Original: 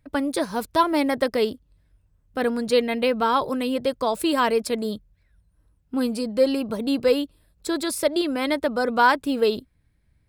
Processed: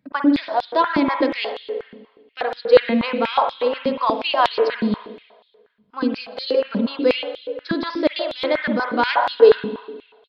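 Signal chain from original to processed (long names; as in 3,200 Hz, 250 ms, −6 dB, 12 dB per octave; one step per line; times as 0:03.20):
spring reverb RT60 1.4 s, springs 49/56 ms, chirp 75 ms, DRR 4 dB
downsampling to 11,025 Hz
high-pass on a step sequencer 8.3 Hz 200–3,700 Hz
level −1 dB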